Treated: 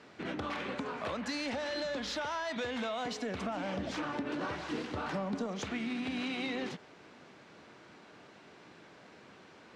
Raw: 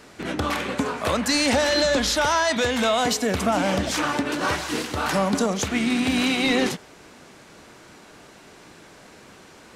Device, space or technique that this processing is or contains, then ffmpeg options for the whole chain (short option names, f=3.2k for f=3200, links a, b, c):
AM radio: -filter_complex "[0:a]highpass=100,lowpass=4.2k,acompressor=threshold=-25dB:ratio=6,asoftclip=type=tanh:threshold=-18.5dB,asettb=1/sr,asplit=3[a][b][c];[a]atrim=end=3.764[d];[b]atrim=start=3.76:end=5.46,asetpts=PTS-STARTPTS,afade=t=in:d=0.004:c=qsin,afade=t=out:st=1.696:d=0.004:c=qsin,tiltshelf=f=770:g=3[e];[c]atrim=start=5.456[f];[d][e]acrossfade=d=0.004:c1=hsin:c2=qsin[g];[g][f]acrossfade=d=0.004:c1=qsin:c2=hsin,volume=-7.5dB"